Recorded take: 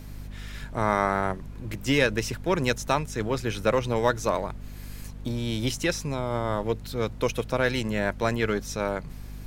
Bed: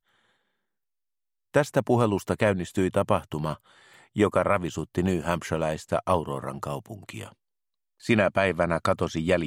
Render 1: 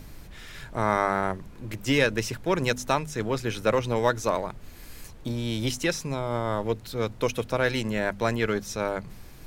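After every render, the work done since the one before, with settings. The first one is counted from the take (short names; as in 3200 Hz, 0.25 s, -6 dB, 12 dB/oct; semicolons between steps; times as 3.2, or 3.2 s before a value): de-hum 50 Hz, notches 5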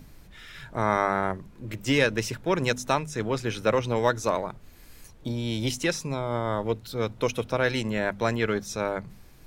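noise print and reduce 6 dB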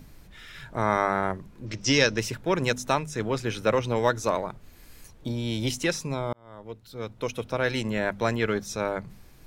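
1.66–2.18 synth low-pass 5600 Hz, resonance Q 5.1; 6.33–7.88 fade in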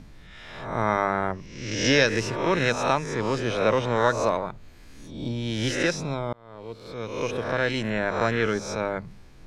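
spectral swells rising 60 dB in 0.78 s; air absorption 68 m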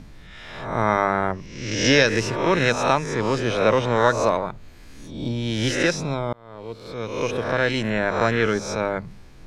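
gain +3.5 dB; limiter -3 dBFS, peak gain reduction 2 dB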